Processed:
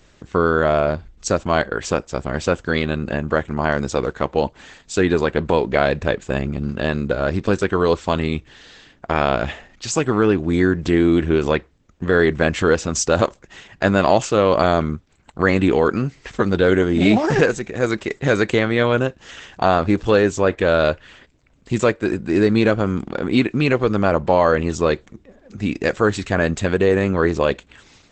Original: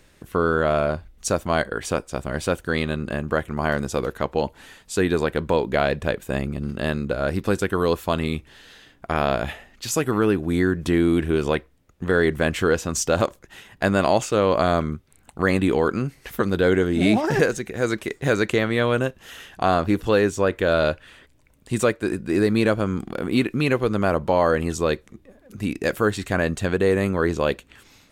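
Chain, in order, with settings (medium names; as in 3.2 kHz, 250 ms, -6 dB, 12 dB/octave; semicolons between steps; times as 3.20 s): brick-wall FIR low-pass 8 kHz; trim +4 dB; Opus 12 kbps 48 kHz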